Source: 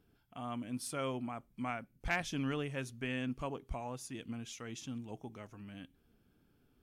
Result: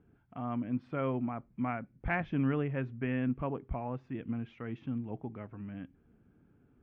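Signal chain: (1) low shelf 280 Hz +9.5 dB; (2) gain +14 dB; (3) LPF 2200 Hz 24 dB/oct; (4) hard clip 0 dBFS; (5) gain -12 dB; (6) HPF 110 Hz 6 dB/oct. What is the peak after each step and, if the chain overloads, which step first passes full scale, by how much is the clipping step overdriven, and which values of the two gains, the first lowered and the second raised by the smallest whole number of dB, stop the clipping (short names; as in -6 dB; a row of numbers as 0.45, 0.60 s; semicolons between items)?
-19.5, -5.5, -5.5, -5.5, -17.5, -20.5 dBFS; no overload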